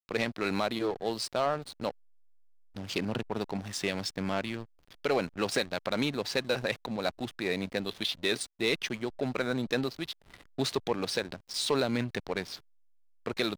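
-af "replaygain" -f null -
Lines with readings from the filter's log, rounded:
track_gain = +11.4 dB
track_peak = 0.100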